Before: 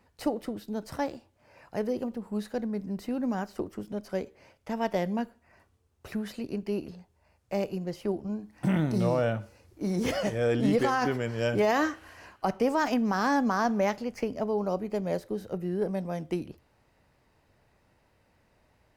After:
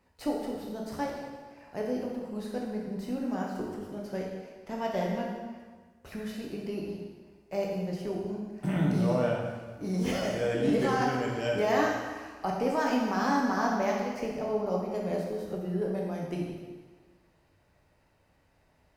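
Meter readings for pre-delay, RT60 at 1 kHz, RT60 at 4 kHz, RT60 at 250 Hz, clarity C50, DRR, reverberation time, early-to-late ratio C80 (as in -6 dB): 5 ms, 1.4 s, 1.3 s, 1.5 s, 1.0 dB, -2.0 dB, 1.4 s, 3.5 dB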